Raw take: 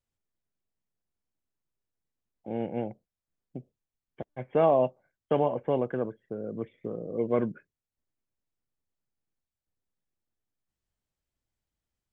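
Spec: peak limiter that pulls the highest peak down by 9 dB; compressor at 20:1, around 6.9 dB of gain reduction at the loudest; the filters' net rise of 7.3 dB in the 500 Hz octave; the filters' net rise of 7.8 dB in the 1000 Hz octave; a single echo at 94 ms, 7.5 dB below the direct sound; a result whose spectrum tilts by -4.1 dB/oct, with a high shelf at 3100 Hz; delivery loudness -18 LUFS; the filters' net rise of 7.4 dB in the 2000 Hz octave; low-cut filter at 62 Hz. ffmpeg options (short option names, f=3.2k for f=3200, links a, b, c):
-af "highpass=62,equalizer=f=500:t=o:g=6.5,equalizer=f=1k:t=o:g=6.5,equalizer=f=2k:t=o:g=6,highshelf=f=3.1k:g=3,acompressor=threshold=-17dB:ratio=20,alimiter=limit=-19dB:level=0:latency=1,aecho=1:1:94:0.422,volume=12.5dB"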